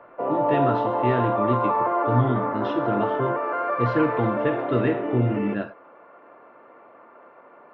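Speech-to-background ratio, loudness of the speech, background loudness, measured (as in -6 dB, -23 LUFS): -1.5 dB, -26.5 LUFS, -25.0 LUFS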